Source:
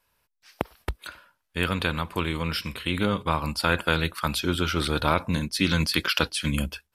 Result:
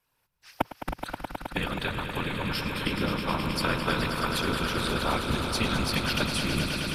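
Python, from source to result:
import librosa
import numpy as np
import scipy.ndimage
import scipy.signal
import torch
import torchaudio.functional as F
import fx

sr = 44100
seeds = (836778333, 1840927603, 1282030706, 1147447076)

y = fx.recorder_agc(x, sr, target_db=-13.5, rise_db_per_s=17.0, max_gain_db=30)
y = fx.whisperise(y, sr, seeds[0])
y = fx.echo_swell(y, sr, ms=106, loudest=5, wet_db=-9.5)
y = y * 10.0 ** (-6.0 / 20.0)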